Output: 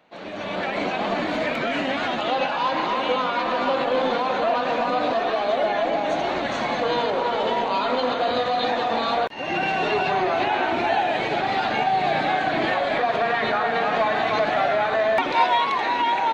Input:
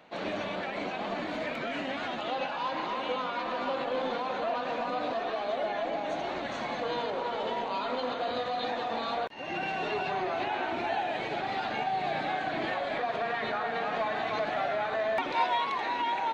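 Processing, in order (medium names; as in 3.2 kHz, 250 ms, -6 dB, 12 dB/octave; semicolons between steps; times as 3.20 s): level rider gain up to 13 dB; trim -3.5 dB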